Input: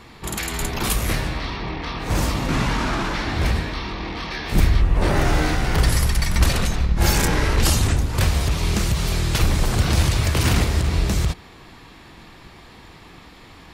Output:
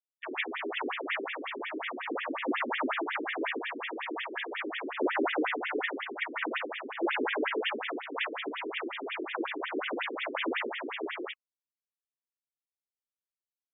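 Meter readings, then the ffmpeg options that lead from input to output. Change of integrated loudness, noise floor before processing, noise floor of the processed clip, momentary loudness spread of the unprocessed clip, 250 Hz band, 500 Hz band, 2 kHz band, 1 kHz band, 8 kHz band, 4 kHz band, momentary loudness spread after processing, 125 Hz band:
−12.0 dB, −45 dBFS, below −85 dBFS, 9 LU, −10.5 dB, −5.5 dB, −5.5 dB, −7.5 dB, below −40 dB, −12.0 dB, 6 LU, below −40 dB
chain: -af "acrusher=bits=4:mix=0:aa=0.000001,afftfilt=real='re*between(b*sr/1024,320*pow(2600/320,0.5+0.5*sin(2*PI*5.5*pts/sr))/1.41,320*pow(2600/320,0.5+0.5*sin(2*PI*5.5*pts/sr))*1.41)':imag='im*between(b*sr/1024,320*pow(2600/320,0.5+0.5*sin(2*PI*5.5*pts/sr))/1.41,320*pow(2600/320,0.5+0.5*sin(2*PI*5.5*pts/sr))*1.41)':win_size=1024:overlap=0.75"

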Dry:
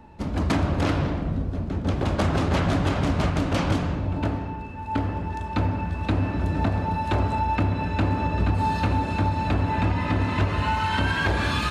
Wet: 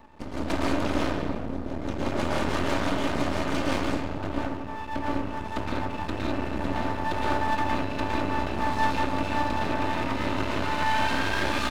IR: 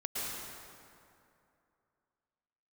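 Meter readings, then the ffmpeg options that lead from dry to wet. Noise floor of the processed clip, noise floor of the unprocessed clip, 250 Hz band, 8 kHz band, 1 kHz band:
−34 dBFS, −32 dBFS, −3.0 dB, can't be measured, −1.0 dB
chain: -filter_complex "[1:a]atrim=start_sample=2205,afade=type=out:start_time=0.27:duration=0.01,atrim=end_sample=12348[link_01];[0:a][link_01]afir=irnorm=-1:irlink=0,acrossover=split=150|2600[link_02][link_03][link_04];[link_02]asoftclip=type=tanh:threshold=-25.5dB[link_05];[link_05][link_03][link_04]amix=inputs=3:normalize=0,aecho=1:1:3.3:0.38,areverse,acompressor=mode=upward:threshold=-30dB:ratio=2.5,areverse,lowshelf=frequency=63:gain=-7.5,aeval=exprs='max(val(0),0)':channel_layout=same"

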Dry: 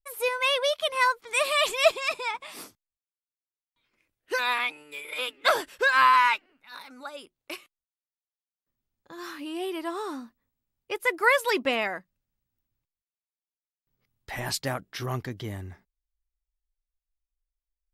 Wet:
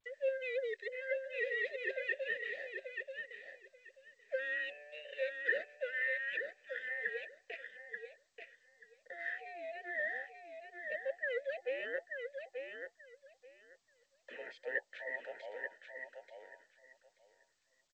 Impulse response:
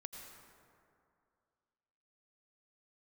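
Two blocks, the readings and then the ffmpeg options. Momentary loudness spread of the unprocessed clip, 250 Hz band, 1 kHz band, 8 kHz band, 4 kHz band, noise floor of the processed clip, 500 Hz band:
20 LU, −23.0 dB, −29.0 dB, below −30 dB, −22.5 dB, −77 dBFS, −9.5 dB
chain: -filter_complex "[0:a]afftfilt=real='real(if(between(b,1,1008),(2*floor((b-1)/48)+1)*48-b,b),0)':imag='imag(if(between(b,1,1008),(2*floor((b-1)/48)+1)*48-b,b),0)*if(between(b,1,1008),-1,1)':win_size=2048:overlap=0.75,acontrast=27,bandreject=frequency=390:width=12,areverse,acompressor=threshold=-29dB:ratio=10,areverse,asplit=3[link_01][link_02][link_03];[link_01]bandpass=frequency=530:width_type=q:width=8,volume=0dB[link_04];[link_02]bandpass=frequency=1840:width_type=q:width=8,volume=-6dB[link_05];[link_03]bandpass=frequency=2480:width_type=q:width=8,volume=-9dB[link_06];[link_04][link_05][link_06]amix=inputs=3:normalize=0,crystalizer=i=1:c=0,highpass=frequency=240:width=0.5412,highpass=frequency=240:width=1.3066,equalizer=frequency=290:width_type=q:width=4:gain=-6,equalizer=frequency=790:width_type=q:width=4:gain=-4,equalizer=frequency=1200:width_type=q:width=4:gain=-9,equalizer=frequency=1800:width_type=q:width=4:gain=9,equalizer=frequency=2800:width_type=q:width=4:gain=-9,lowpass=frequency=3500:width=0.5412,lowpass=frequency=3500:width=1.3066,asplit=2[link_07][link_08];[link_08]aecho=0:1:884|1768|2652:0.501|0.0852|0.0145[link_09];[link_07][link_09]amix=inputs=2:normalize=0,volume=2dB" -ar 16000 -c:a g722

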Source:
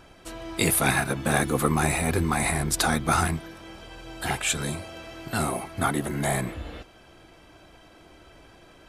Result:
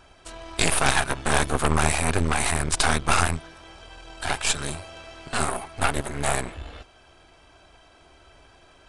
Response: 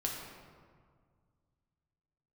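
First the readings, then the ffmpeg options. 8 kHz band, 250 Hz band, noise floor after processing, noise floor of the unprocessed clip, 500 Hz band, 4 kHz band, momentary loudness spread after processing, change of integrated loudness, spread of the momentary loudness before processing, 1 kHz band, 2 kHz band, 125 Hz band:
+1.5 dB, −3.5 dB, −55 dBFS, −53 dBFS, 0.0 dB, +4.0 dB, 19 LU, +1.0 dB, 19 LU, +2.0 dB, +2.0 dB, −0.5 dB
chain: -af "aeval=exprs='0.473*(cos(1*acos(clip(val(0)/0.473,-1,1)))-cos(1*PI/2))+0.15*(cos(6*acos(clip(val(0)/0.473,-1,1)))-cos(6*PI/2))':channel_layout=same,equalizer=frequency=125:width_type=o:width=0.33:gain=-9,equalizer=frequency=200:width_type=o:width=0.33:gain=-11,equalizer=frequency=315:width_type=o:width=0.33:gain=-8,equalizer=frequency=500:width_type=o:width=0.33:gain=-5,equalizer=frequency=2000:width_type=o:width=0.33:gain=-3,aresample=22050,aresample=44100"

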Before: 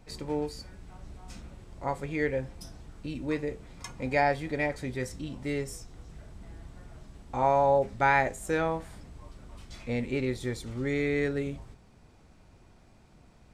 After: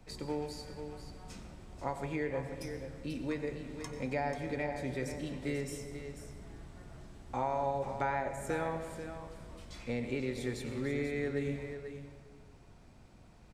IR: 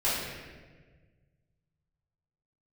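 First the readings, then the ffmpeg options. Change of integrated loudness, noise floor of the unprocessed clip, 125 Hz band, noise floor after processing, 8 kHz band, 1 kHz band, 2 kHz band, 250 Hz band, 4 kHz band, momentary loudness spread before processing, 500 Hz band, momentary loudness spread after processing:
−8.0 dB, −58 dBFS, −4.5 dB, −57 dBFS, −4.0 dB, −8.5 dB, −9.0 dB, −4.5 dB, −4.0 dB, 24 LU, −6.5 dB, 15 LU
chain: -filter_complex "[0:a]acrossover=split=130|1200[link_01][link_02][link_03];[link_01]acompressor=threshold=-47dB:ratio=4[link_04];[link_02]acompressor=threshold=-31dB:ratio=4[link_05];[link_03]acompressor=threshold=-42dB:ratio=4[link_06];[link_04][link_05][link_06]amix=inputs=3:normalize=0,aecho=1:1:489:0.335,asplit=2[link_07][link_08];[1:a]atrim=start_sample=2205,adelay=89[link_09];[link_08][link_09]afir=irnorm=-1:irlink=0,volume=-19.5dB[link_10];[link_07][link_10]amix=inputs=2:normalize=0,volume=-2dB"

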